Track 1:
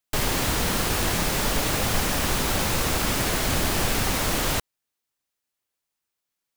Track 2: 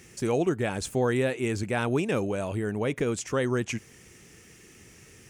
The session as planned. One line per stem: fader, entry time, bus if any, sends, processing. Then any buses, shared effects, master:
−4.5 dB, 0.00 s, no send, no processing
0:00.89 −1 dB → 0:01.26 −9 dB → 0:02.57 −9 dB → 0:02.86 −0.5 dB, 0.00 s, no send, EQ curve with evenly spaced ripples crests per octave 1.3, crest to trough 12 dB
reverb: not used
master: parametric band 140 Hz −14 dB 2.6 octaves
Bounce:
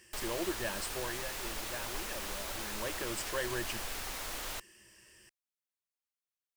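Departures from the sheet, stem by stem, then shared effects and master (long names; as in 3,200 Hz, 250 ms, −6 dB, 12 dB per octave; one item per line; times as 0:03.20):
stem 1 −4.5 dB → −14.0 dB
stem 2 −1.0 dB → −7.5 dB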